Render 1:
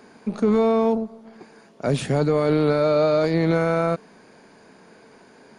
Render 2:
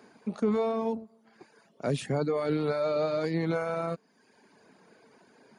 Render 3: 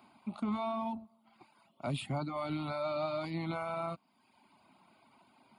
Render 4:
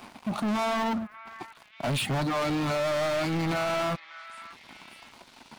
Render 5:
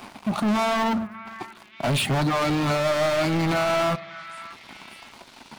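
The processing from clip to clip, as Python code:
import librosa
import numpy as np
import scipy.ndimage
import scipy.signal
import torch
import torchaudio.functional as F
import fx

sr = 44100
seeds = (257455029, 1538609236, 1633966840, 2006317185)

y1 = fx.dereverb_blind(x, sr, rt60_s=0.9)
y1 = scipy.signal.sosfilt(scipy.signal.butter(2, 88.0, 'highpass', fs=sr, output='sos'), y1)
y1 = F.gain(torch.from_numpy(y1), -6.5).numpy()
y2 = fx.peak_eq(y1, sr, hz=170.0, db=-5.5, octaves=0.77)
y2 = fx.fixed_phaser(y2, sr, hz=1700.0, stages=6)
y3 = fx.leveller(y2, sr, passes=5)
y3 = fx.echo_stepped(y3, sr, ms=588, hz=1600.0, octaves=0.7, feedback_pct=70, wet_db=-11.0)
y4 = fx.rev_fdn(y3, sr, rt60_s=1.0, lf_ratio=1.6, hf_ratio=0.35, size_ms=15.0, drr_db=17.0)
y4 = F.gain(torch.from_numpy(y4), 5.0).numpy()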